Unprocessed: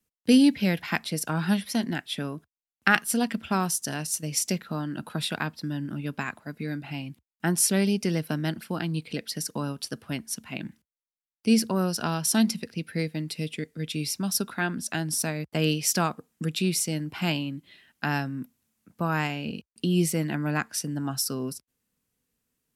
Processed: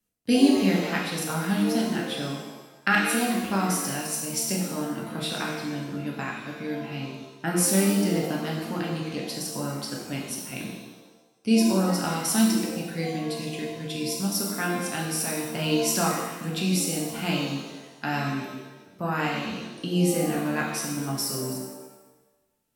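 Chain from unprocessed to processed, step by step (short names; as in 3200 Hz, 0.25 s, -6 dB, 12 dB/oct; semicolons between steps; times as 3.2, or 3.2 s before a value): shimmer reverb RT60 1.1 s, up +7 st, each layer -8 dB, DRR -2.5 dB; gain -4 dB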